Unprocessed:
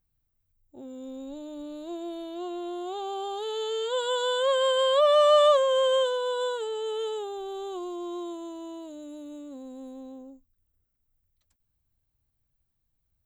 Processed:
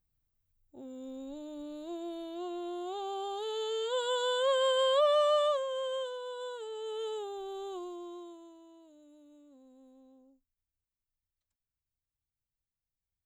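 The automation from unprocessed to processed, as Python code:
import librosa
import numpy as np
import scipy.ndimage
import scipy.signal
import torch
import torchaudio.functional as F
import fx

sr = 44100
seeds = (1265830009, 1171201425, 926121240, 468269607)

y = fx.gain(x, sr, db=fx.line((4.91, -4.0), (5.7, -12.0), (6.39, -12.0), (7.13, -5.0), (7.74, -5.0), (8.66, -17.0)))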